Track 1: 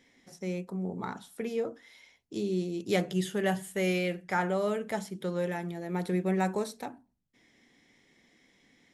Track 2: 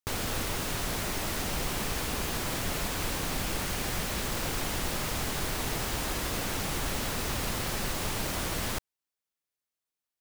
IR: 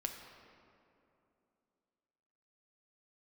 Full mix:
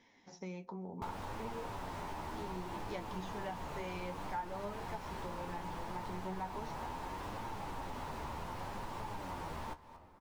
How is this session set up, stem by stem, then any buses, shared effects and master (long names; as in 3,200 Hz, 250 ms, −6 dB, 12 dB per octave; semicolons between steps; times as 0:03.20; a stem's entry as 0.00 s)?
+0.5 dB, 0.00 s, no send, no echo send, Butterworth low-pass 6,800 Hz 96 dB per octave
+1.5 dB, 0.95 s, send −13 dB, echo send −21.5 dB, slew-rate limiting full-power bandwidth 28 Hz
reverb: on, RT60 2.8 s, pre-delay 3 ms
echo: repeating echo 230 ms, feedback 25%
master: parametric band 920 Hz +13.5 dB 0.45 octaves; flanger 0.67 Hz, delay 8.6 ms, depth 4.9 ms, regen +47%; downward compressor 3 to 1, threshold −43 dBFS, peak gain reduction 18.5 dB